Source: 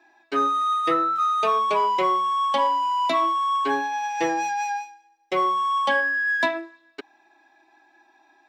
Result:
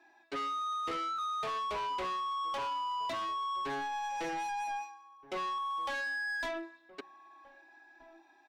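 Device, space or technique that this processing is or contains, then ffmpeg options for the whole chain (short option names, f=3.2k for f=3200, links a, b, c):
saturation between pre-emphasis and de-emphasis: -filter_complex "[0:a]asettb=1/sr,asplit=3[a][b][c];[a]atrim=end=5.584[d];[b]atrim=start=5.58:end=6.07,asetpts=PTS-STARTPTS,afade=t=in:d=0.004:c=qsin,afade=t=out:st=0.486:d=0.004:c=qsin,highpass=400[e];[c]atrim=start=6.066[f];[d][e]acrossfade=d=0.004:c1=hsin:c2=qsin[g];[g][f]acrossfade=d=0.004:c1=qsin:c2=hsin,highshelf=f=6.3k:g=11.5,asoftclip=type=tanh:threshold=-28.5dB,highshelf=f=6.3k:g=-11.5,asplit=2[h][i];[i]adelay=1574,volume=-18dB,highshelf=f=4k:g=-35.4[j];[h][j]amix=inputs=2:normalize=0,volume=-5dB"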